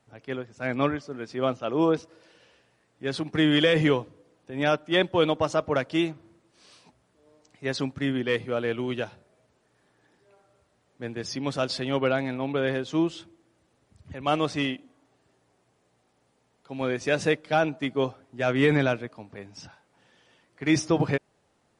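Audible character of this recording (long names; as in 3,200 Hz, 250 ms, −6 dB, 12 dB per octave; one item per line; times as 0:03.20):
background noise floor −69 dBFS
spectral slope −4.5 dB per octave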